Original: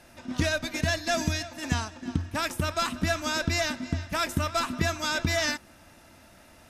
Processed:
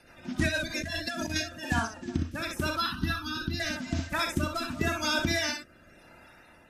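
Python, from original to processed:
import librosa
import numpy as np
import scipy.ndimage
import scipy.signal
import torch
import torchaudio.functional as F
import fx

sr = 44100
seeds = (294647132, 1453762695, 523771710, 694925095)

y = fx.spec_quant(x, sr, step_db=30)
y = fx.notch(y, sr, hz=4000.0, q=10.0, at=(4.84, 5.27))
y = fx.peak_eq(y, sr, hz=1500.0, db=3.0, octaves=0.26)
y = fx.fixed_phaser(y, sr, hz=2200.0, stages=6, at=(2.76, 3.6))
y = fx.room_early_taps(y, sr, ms=(36, 62), db=(-10.5, -5.5))
y = fx.over_compress(y, sr, threshold_db=-28.0, ratio=-0.5, at=(0.76, 1.54), fade=0.02)
y = fx.rotary_switch(y, sr, hz=6.3, then_hz=0.9, switch_at_s=0.82)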